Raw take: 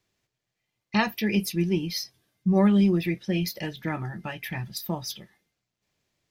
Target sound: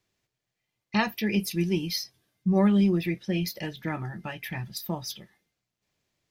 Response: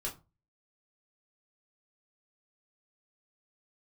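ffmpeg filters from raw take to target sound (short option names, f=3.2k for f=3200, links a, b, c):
-filter_complex "[0:a]asettb=1/sr,asplit=3[a][b][c];[a]atrim=end=1.514[d];[b]atrim=start=1.51:end=1.96,asetpts=PTS-STARTPTS,afade=t=in:d=0.004:c=qsin,afade=t=out:st=0.446:d=0.004:c=qsin,highshelf=f=3.5k:g=7.5[e];[c]atrim=start=1.956[f];[d][e]acrossfade=d=0.004:c1=hsin:c2=qsin[g];[g][f]acrossfade=d=0.004:c1=qsin:c2=hsin,volume=-1.5dB"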